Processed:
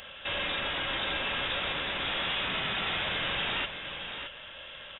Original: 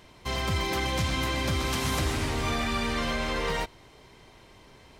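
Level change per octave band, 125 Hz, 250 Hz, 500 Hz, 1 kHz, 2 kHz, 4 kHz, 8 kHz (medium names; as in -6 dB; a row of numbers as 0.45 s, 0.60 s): -14.0 dB, -11.0 dB, -6.0 dB, -4.0 dB, +1.5 dB, +3.0 dB, under -35 dB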